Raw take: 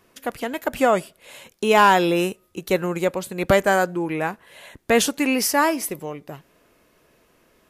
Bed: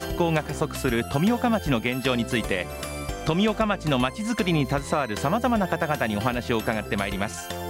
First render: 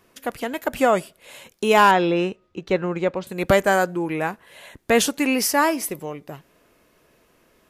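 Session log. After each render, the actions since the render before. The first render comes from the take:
0:01.91–0:03.27: high-frequency loss of the air 160 metres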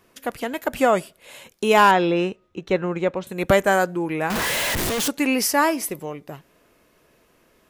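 0:02.46–0:03.80: notch filter 4,700 Hz, Q 8
0:04.30–0:05.08: sign of each sample alone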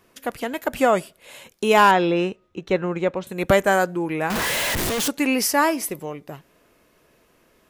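no processing that can be heard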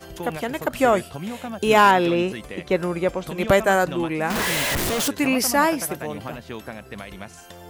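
mix in bed −10 dB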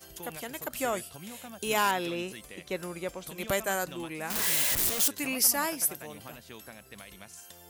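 first-order pre-emphasis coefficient 0.8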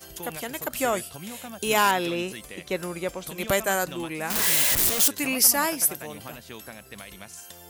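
level +5.5 dB

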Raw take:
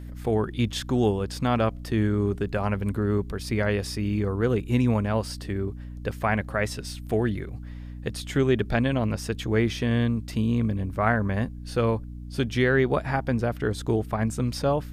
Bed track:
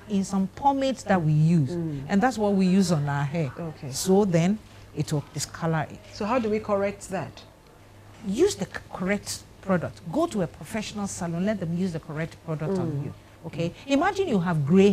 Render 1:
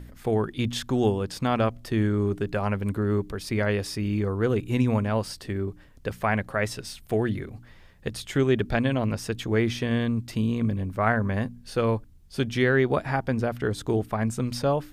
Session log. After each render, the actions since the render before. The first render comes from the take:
hum removal 60 Hz, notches 5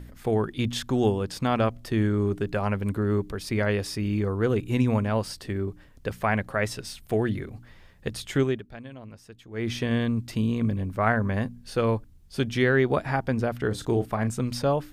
0:08.41–0:09.74: duck −17.5 dB, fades 0.21 s
0:13.67–0:14.30: double-tracking delay 34 ms −11 dB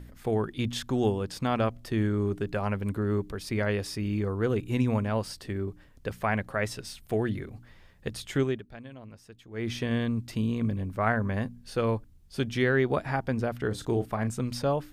level −3 dB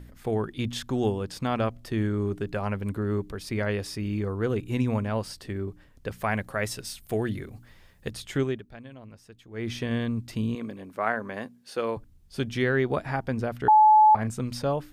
0:06.19–0:08.11: high-shelf EQ 6,300 Hz +9 dB
0:10.55–0:11.97: high-pass filter 300 Hz
0:13.68–0:14.15: beep over 859 Hz −12.5 dBFS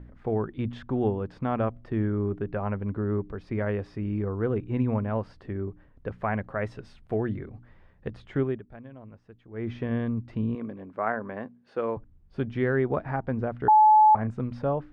low-pass filter 1,500 Hz 12 dB per octave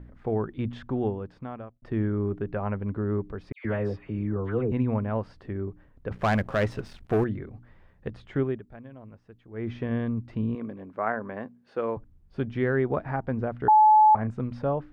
0:00.85–0:01.82: fade out
0:03.52–0:04.72: all-pass dispersion lows, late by 129 ms, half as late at 1,700 Hz
0:06.11–0:07.24: leveller curve on the samples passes 2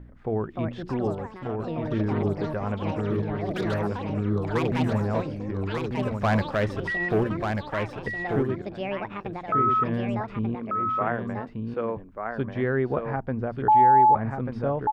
delay with pitch and tempo change per echo 391 ms, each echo +7 semitones, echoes 2, each echo −6 dB
single-tap delay 1,189 ms −4.5 dB

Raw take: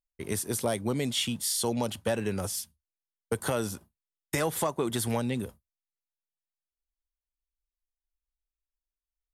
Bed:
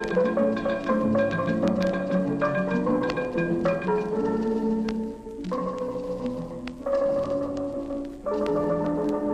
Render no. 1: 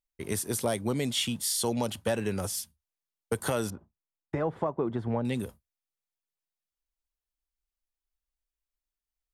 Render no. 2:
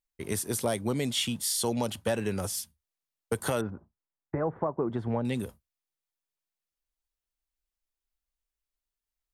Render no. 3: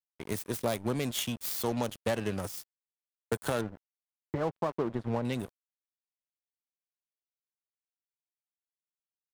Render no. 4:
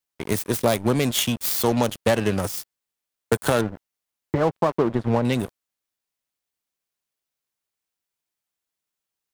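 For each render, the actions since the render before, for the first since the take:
0:03.70–0:05.25: low-pass filter 1,100 Hz
0:03.61–0:04.90: low-pass filter 1,800 Hz 24 dB per octave
phase distortion by the signal itself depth 0.11 ms; dead-zone distortion −40 dBFS
level +10.5 dB

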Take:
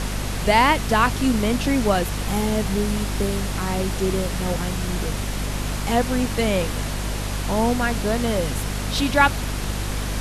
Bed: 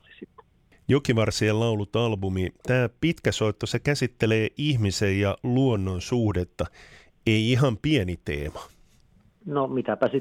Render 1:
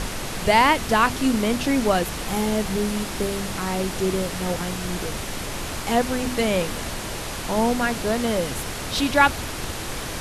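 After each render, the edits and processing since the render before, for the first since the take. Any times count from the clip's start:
hum removal 50 Hz, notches 5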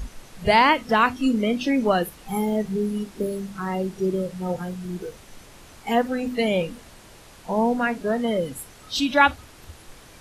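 noise reduction from a noise print 17 dB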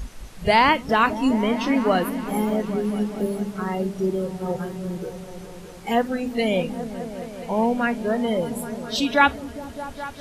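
echo whose low-pass opens from repeat to repeat 206 ms, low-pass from 200 Hz, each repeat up 1 octave, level −6 dB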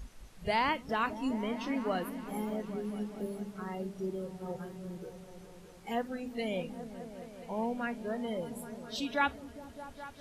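level −13 dB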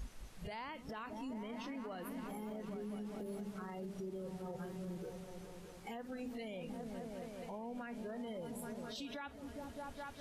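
downward compressor 6 to 1, threshold −36 dBFS, peak gain reduction 12 dB
brickwall limiter −37 dBFS, peak gain reduction 10 dB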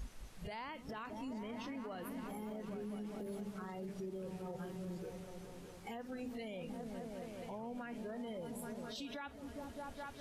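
mix in bed −40 dB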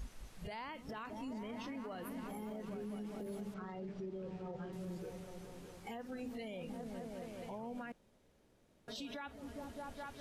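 0:03.54–0:04.73: high-frequency loss of the air 130 metres
0:07.92–0:08.88: fill with room tone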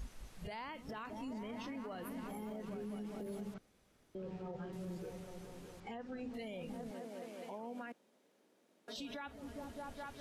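0:03.58–0:04.15: fill with room tone
0:05.80–0:06.34: high-frequency loss of the air 96 metres
0:06.91–0:08.96: high-pass filter 220 Hz 24 dB per octave

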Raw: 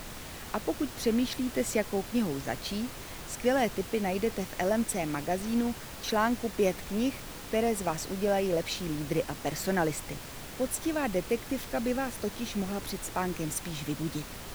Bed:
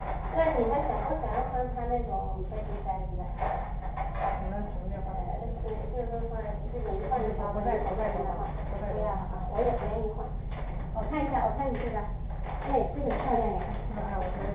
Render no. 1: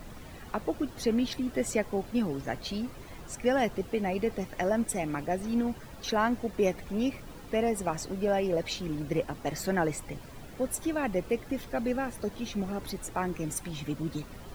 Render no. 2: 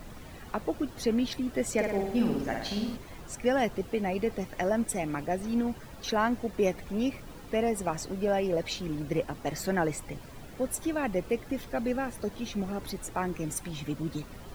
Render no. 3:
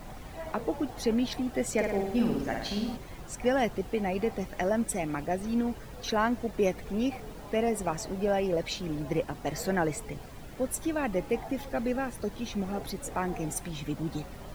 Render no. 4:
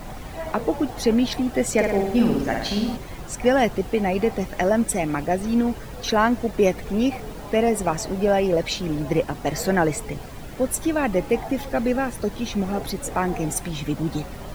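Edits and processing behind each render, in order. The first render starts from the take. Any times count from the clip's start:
broadband denoise 11 dB, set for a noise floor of −43 dBFS
0:01.73–0:02.97: flutter between parallel walls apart 9.3 metres, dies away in 0.78 s
mix in bed −15.5 dB
level +8 dB

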